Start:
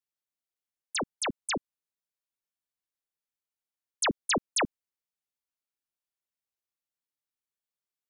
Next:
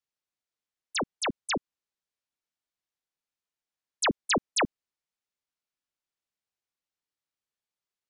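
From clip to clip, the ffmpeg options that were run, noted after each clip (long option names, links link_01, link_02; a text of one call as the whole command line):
ffmpeg -i in.wav -af "lowpass=7100,acontrast=35,volume=-3.5dB" out.wav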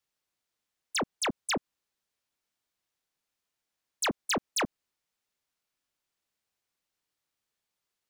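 ffmpeg -i in.wav -filter_complex "[0:a]asplit=2[link_01][link_02];[link_02]alimiter=level_in=7.5dB:limit=-24dB:level=0:latency=1:release=94,volume=-7.5dB,volume=1dB[link_03];[link_01][link_03]amix=inputs=2:normalize=0,asoftclip=type=tanh:threshold=-25.5dB" out.wav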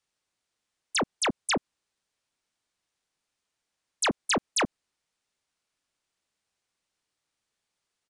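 ffmpeg -i in.wav -af "aresample=22050,aresample=44100,volume=3.5dB" out.wav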